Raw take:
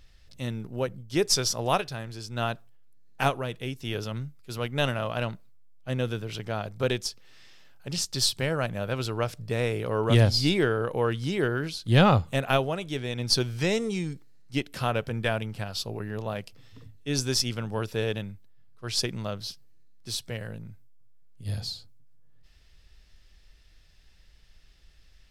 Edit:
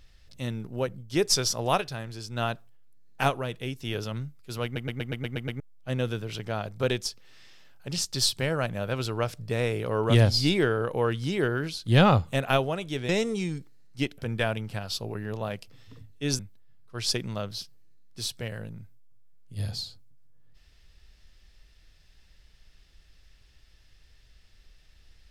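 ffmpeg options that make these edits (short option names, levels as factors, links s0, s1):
-filter_complex "[0:a]asplit=12[s0][s1][s2][s3][s4][s5][s6][s7][s8][s9][s10][s11];[s0]atrim=end=4.762[s12];[s1]atrim=start=4.638:end=4.762[s13];[s2]atrim=start=4.638:end=4.762[s14];[s3]atrim=start=4.638:end=4.762[s15];[s4]atrim=start=4.638:end=4.762[s16];[s5]atrim=start=4.638:end=4.762[s17];[s6]atrim=start=4.638:end=4.762[s18];[s7]atrim=start=4.638:end=4.762[s19];[s8]atrim=start=5.598:end=13.092[s20];[s9]atrim=start=13.638:end=14.732[s21];[s10]atrim=start=15.028:end=17.242[s22];[s11]atrim=start=18.278[s23];[s12][s13]acrossfade=d=0.004:c1=hsin:c2=hsin[s24];[s24][s14]acrossfade=d=0.004:c1=hsin:c2=hsin[s25];[s25][s15]acrossfade=d=0.004:c1=hsin:c2=hsin[s26];[s26][s16]acrossfade=d=0.004:c1=hsin:c2=hsin[s27];[s27][s17]acrossfade=d=0.004:c1=hsin:c2=hsin[s28];[s28][s18]acrossfade=d=0.004:c1=hsin:c2=hsin[s29];[s29][s19]acrossfade=d=0.004:c1=hsin:c2=hsin[s30];[s30][s20]acrossfade=d=0.004:c1=hsin:c2=hsin[s31];[s31][s21]acrossfade=d=0.004:c1=hsin:c2=hsin[s32];[s32][s22]acrossfade=d=0.004:c1=hsin:c2=hsin[s33];[s33][s23]acrossfade=d=0.004:c1=hsin:c2=hsin"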